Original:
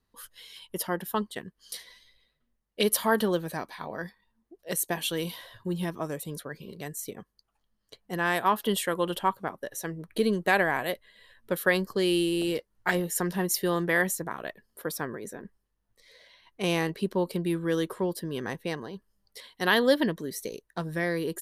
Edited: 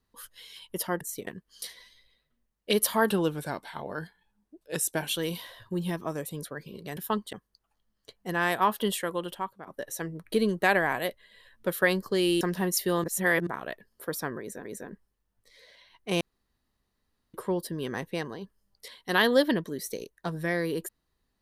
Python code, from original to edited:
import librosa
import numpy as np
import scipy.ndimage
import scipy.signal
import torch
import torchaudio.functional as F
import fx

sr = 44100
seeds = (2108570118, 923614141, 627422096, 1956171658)

y = fx.edit(x, sr, fx.swap(start_s=1.01, length_s=0.36, other_s=6.91, other_length_s=0.26),
    fx.speed_span(start_s=3.2, length_s=1.82, speed=0.92),
    fx.fade_out_to(start_s=8.57, length_s=0.94, floor_db=-13.5),
    fx.cut(start_s=12.25, length_s=0.93),
    fx.reverse_span(start_s=13.81, length_s=0.43),
    fx.repeat(start_s=15.17, length_s=0.25, count=2),
    fx.room_tone_fill(start_s=16.73, length_s=1.13), tone=tone)